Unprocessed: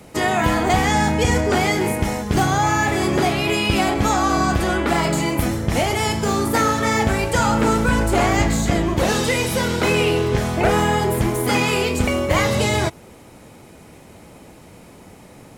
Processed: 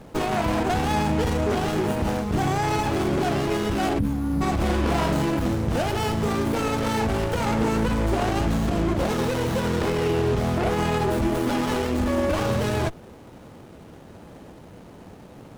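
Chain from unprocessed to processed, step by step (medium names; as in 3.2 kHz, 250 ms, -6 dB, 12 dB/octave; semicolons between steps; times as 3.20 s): 3.99–4.42 s: time-frequency box 320–8800 Hz -22 dB; 11.08–12.37 s: comb 3.4 ms, depth 59%; peak limiter -13.5 dBFS, peak gain reduction 10 dB; 4.56–5.25 s: flutter echo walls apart 4.8 m, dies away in 0.32 s; sliding maximum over 17 samples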